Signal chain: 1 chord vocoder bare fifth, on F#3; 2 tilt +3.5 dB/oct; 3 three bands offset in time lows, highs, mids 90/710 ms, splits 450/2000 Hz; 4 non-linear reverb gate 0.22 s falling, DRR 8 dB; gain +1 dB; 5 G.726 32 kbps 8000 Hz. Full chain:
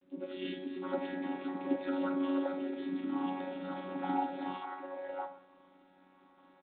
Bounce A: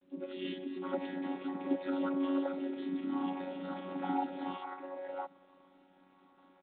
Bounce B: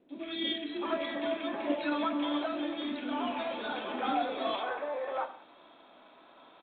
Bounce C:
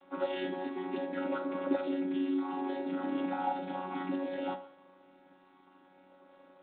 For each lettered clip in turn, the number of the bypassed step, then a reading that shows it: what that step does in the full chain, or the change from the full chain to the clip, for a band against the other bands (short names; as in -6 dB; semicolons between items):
4, 2 kHz band -1.5 dB; 1, 4 kHz band +10.0 dB; 3, momentary loudness spread change -4 LU